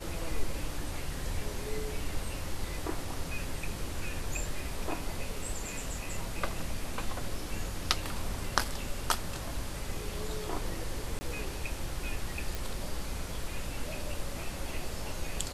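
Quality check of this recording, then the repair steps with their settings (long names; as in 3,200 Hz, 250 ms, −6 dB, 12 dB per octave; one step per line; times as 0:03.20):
0:11.19–0:11.21: drop-out 20 ms
0:12.55: click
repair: click removal
repair the gap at 0:11.19, 20 ms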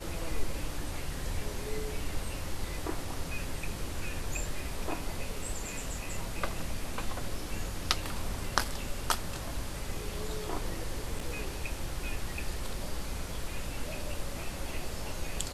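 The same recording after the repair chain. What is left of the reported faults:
none of them is left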